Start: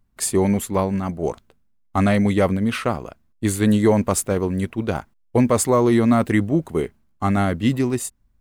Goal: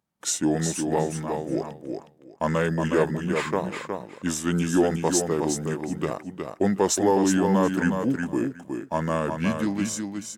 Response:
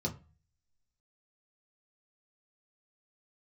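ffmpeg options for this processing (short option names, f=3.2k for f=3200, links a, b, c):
-filter_complex "[0:a]highpass=270,asetrate=35721,aresample=44100,asplit=2[a][b];[b]aecho=0:1:365|730|1095:0.531|0.0903|0.0153[c];[a][c]amix=inputs=2:normalize=0,volume=-3dB"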